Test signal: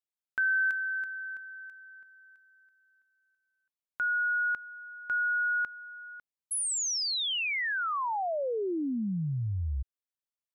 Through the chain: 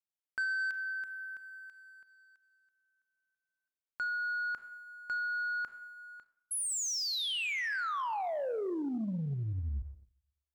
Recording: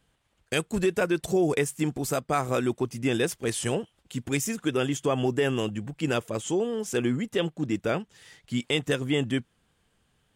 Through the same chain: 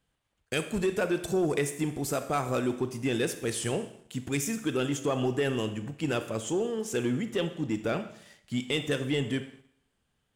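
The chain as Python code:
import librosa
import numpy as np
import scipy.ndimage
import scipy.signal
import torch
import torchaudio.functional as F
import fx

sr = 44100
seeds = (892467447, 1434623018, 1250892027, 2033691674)

y = fx.rev_schroeder(x, sr, rt60_s=0.78, comb_ms=28, drr_db=10.0)
y = fx.leveller(y, sr, passes=1)
y = y * 10.0 ** (-6.0 / 20.0)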